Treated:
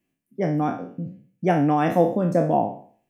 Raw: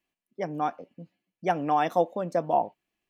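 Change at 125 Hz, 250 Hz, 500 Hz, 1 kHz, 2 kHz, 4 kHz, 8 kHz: +14.0 dB, +12.0 dB, +5.5 dB, +1.5 dB, +4.0 dB, +0.5 dB, can't be measured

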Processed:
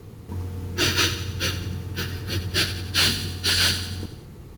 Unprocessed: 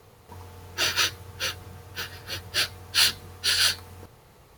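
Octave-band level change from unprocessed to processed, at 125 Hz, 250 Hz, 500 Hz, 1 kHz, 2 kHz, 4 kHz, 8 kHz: +14.0, +15.5, +7.5, +2.0, +2.0, +1.5, +1.0 decibels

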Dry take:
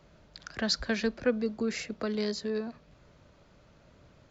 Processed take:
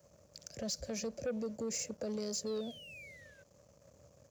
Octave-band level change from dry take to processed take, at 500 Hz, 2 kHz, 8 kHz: −7.0 dB, −14.0 dB, can't be measured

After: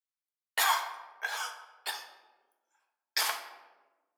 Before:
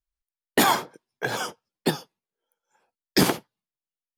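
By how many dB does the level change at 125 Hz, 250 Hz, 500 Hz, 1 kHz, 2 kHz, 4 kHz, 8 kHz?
below −40 dB, below −35 dB, −19.0 dB, −6.5 dB, −4.0 dB, −5.0 dB, −5.0 dB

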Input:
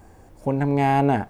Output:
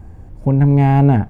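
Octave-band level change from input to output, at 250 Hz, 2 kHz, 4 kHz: +7.5 dB, −0.5 dB, can't be measured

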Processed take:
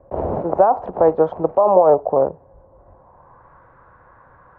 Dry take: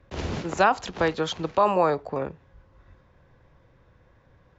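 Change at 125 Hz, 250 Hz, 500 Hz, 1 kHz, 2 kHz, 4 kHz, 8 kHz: +2.0 dB, +4.5 dB, +11.0 dB, +5.5 dB, below −10 dB, below −25 dB, can't be measured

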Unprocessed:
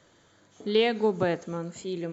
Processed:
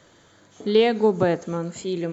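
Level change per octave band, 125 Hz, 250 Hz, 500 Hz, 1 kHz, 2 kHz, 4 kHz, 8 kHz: +6.0 dB, +6.0 dB, +5.5 dB, +5.0 dB, +2.0 dB, +2.0 dB, can't be measured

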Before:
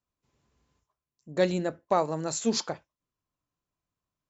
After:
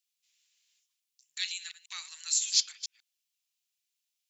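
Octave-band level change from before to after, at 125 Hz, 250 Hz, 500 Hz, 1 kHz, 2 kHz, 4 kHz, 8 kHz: below −40 dB, below −40 dB, below −40 dB, −26.0 dB, −3.0 dB, +6.5 dB, can't be measured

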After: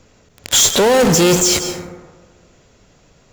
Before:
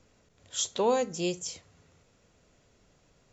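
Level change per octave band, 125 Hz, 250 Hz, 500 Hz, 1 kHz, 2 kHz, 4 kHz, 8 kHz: +22.0 dB, +18.5 dB, +15.0 dB, +13.0 dB, +22.0 dB, +20.5 dB, can't be measured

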